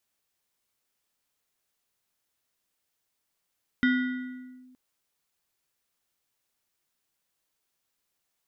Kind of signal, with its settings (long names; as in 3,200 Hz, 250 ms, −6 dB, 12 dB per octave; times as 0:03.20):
two-operator FM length 0.92 s, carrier 254 Hz, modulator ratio 6.71, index 0.84, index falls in 0.84 s linear, decay 1.58 s, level −18 dB